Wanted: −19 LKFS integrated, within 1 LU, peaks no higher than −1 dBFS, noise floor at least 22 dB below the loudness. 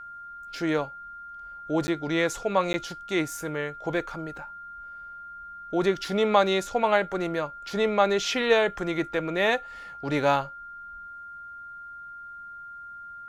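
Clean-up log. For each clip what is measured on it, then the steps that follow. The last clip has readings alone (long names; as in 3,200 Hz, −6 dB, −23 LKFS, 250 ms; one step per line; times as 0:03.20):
number of dropouts 2; longest dropout 10 ms; interfering tone 1,400 Hz; level of the tone −39 dBFS; integrated loudness −26.5 LKFS; sample peak −7.0 dBFS; target loudness −19.0 LKFS
→ repair the gap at 0:01.87/0:02.73, 10 ms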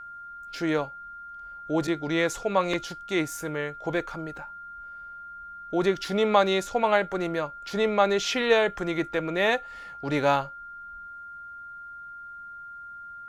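number of dropouts 0; interfering tone 1,400 Hz; level of the tone −39 dBFS
→ notch filter 1,400 Hz, Q 30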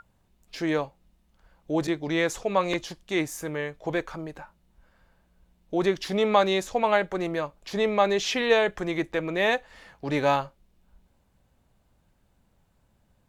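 interfering tone none found; integrated loudness −26.5 LKFS; sample peak −7.0 dBFS; target loudness −19.0 LKFS
→ level +7.5 dB
brickwall limiter −1 dBFS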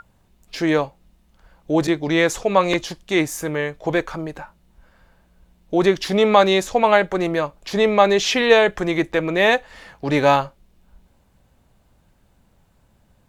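integrated loudness −19.0 LKFS; sample peak −1.0 dBFS; background noise floor −60 dBFS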